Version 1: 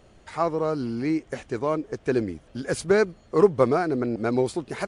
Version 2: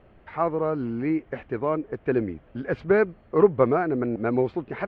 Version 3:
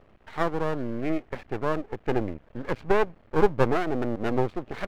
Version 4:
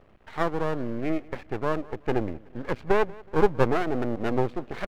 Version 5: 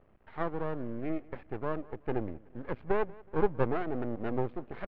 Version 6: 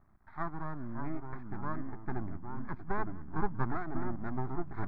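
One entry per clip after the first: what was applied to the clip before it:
low-pass 2.6 kHz 24 dB/octave
half-wave rectifier; trim +1.5 dB
feedback delay 185 ms, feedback 37%, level -22.5 dB
distance through air 390 m; trim -6 dB
ever faster or slower copies 503 ms, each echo -3 st, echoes 3, each echo -6 dB; static phaser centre 1.2 kHz, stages 4

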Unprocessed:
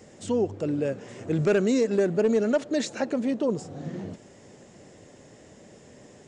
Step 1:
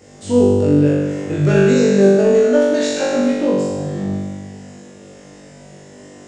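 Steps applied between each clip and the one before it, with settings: flutter echo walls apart 3.5 m, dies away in 1.5 s; trim +2.5 dB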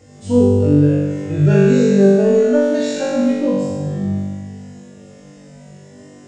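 harmonic-percussive separation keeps harmonic; bass shelf 230 Hz +8 dB; trim -2.5 dB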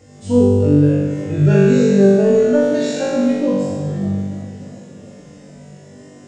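modulated delay 294 ms, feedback 74%, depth 189 cents, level -22 dB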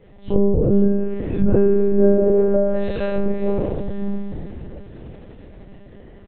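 low-pass that closes with the level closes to 940 Hz, closed at -9.5 dBFS; frequency-shifting echo 497 ms, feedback 58%, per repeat -75 Hz, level -16 dB; monotone LPC vocoder at 8 kHz 200 Hz; trim -2.5 dB

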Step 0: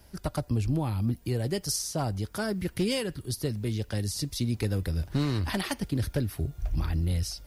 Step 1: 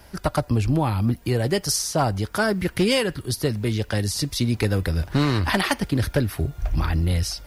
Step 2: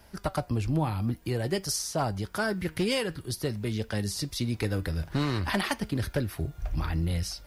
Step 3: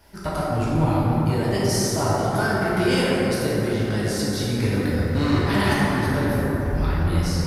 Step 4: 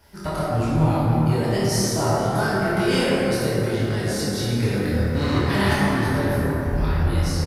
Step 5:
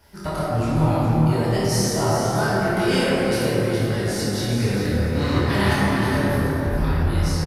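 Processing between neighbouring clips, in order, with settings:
peaking EQ 1.3 kHz +7 dB 2.8 oct; trim +5.5 dB
flange 0.52 Hz, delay 4.4 ms, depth 2.4 ms, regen +85%; trim -2.5 dB
plate-style reverb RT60 4.7 s, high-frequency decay 0.3×, DRR -9 dB; trim -1 dB
doubling 26 ms -3 dB; trim -1.5 dB
delay 414 ms -8 dB

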